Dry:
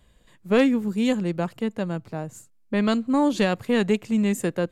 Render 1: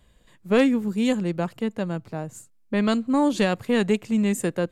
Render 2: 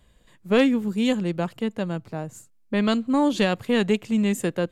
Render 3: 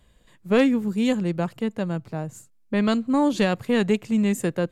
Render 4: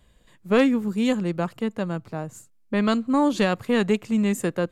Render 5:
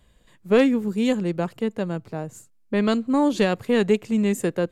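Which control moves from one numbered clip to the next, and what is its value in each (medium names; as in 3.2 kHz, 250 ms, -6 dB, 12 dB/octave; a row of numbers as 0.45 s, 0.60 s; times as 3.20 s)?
dynamic bell, frequency: 8.7 kHz, 3.2 kHz, 140 Hz, 1.2 kHz, 420 Hz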